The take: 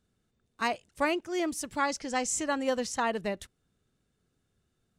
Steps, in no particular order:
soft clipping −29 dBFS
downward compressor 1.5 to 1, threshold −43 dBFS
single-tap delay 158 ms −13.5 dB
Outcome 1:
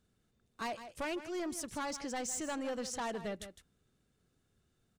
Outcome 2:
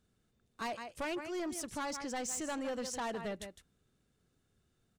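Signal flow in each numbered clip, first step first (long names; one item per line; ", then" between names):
soft clipping, then single-tap delay, then downward compressor
single-tap delay, then soft clipping, then downward compressor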